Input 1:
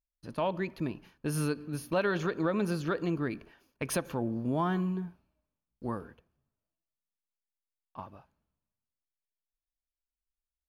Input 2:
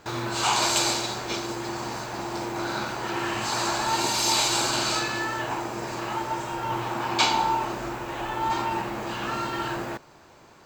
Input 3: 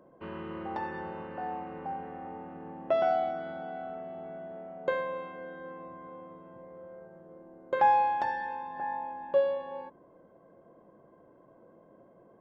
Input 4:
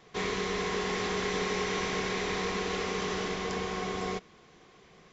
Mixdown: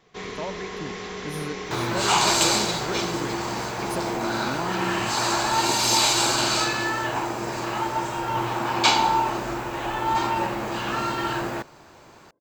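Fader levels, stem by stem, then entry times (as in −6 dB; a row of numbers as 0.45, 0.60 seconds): −3.0, +3.0, −13.5, −3.0 decibels; 0.00, 1.65, 1.05, 0.00 seconds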